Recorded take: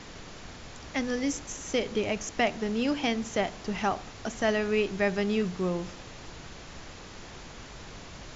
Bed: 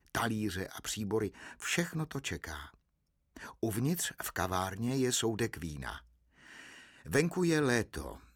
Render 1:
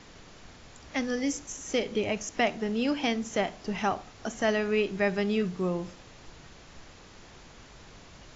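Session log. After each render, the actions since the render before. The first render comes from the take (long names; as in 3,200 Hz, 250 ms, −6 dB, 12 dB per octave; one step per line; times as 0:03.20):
noise reduction from a noise print 6 dB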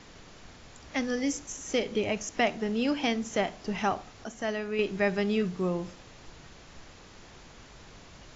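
0:04.24–0:04.79: clip gain −5.5 dB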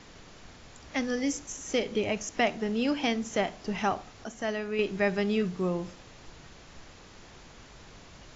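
no processing that can be heard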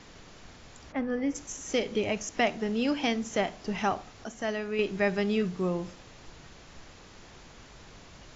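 0:00.91–0:01.34: low-pass filter 1,300 Hz → 2,100 Hz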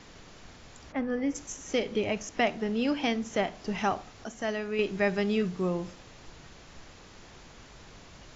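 0:01.54–0:03.55: high-frequency loss of the air 52 metres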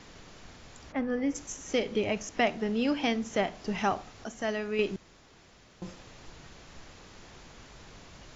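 0:04.96–0:05.82: fill with room tone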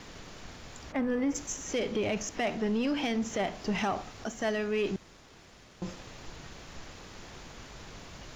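brickwall limiter −22.5 dBFS, peak gain reduction 8 dB
leveller curve on the samples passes 1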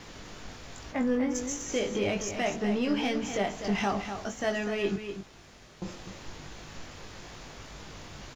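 double-tracking delay 20 ms −5 dB
single-tap delay 248 ms −8.5 dB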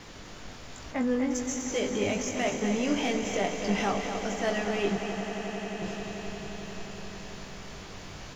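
echo that builds up and dies away 88 ms, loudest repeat 8, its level −15 dB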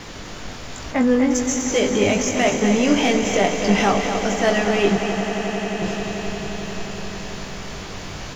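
level +10.5 dB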